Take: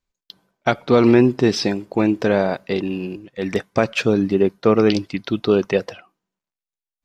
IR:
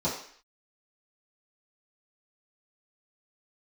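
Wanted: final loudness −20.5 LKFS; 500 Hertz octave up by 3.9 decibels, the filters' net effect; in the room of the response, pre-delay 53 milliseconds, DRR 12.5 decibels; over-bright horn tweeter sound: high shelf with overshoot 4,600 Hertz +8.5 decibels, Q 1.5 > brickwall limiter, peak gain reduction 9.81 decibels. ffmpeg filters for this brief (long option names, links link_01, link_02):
-filter_complex "[0:a]equalizer=frequency=500:width_type=o:gain=5,asplit=2[link_01][link_02];[1:a]atrim=start_sample=2205,adelay=53[link_03];[link_02][link_03]afir=irnorm=-1:irlink=0,volume=-22dB[link_04];[link_01][link_04]amix=inputs=2:normalize=0,highshelf=frequency=4600:width_type=q:width=1.5:gain=8.5,volume=-0.5dB,alimiter=limit=-9dB:level=0:latency=1"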